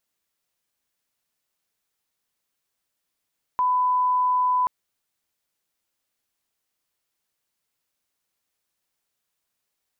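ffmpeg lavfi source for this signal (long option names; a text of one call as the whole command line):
ffmpeg -f lavfi -i "sine=frequency=1000:duration=1.08:sample_rate=44100,volume=0.06dB" out.wav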